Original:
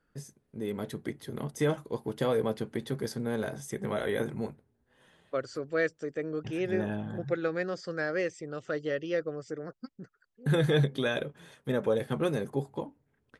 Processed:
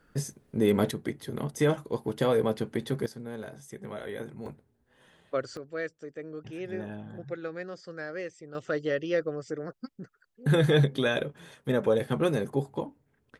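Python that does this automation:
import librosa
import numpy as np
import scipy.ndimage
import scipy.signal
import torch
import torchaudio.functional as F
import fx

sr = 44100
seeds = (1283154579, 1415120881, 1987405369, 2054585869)

y = fx.gain(x, sr, db=fx.steps((0.0, 11.0), (0.91, 3.0), (3.06, -7.0), (4.46, 2.0), (5.57, -6.0), (8.55, 3.0)))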